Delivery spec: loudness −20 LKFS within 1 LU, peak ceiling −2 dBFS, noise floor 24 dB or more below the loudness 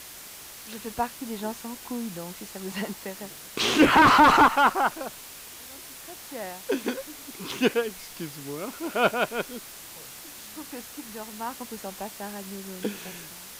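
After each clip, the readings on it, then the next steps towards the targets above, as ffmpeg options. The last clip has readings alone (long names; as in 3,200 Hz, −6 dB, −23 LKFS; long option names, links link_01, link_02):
background noise floor −44 dBFS; target noise floor −49 dBFS; integrated loudness −24.5 LKFS; sample peak −8.5 dBFS; target loudness −20.0 LKFS
→ -af "afftdn=noise_reduction=6:noise_floor=-44"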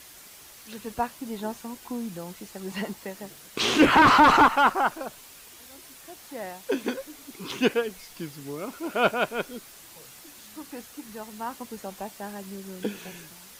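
background noise floor −48 dBFS; integrated loudness −24.0 LKFS; sample peak −8.5 dBFS; target loudness −20.0 LKFS
→ -af "volume=4dB"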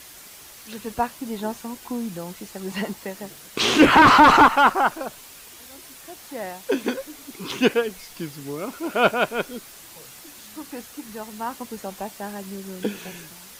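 integrated loudness −20.0 LKFS; sample peak −4.5 dBFS; background noise floor −44 dBFS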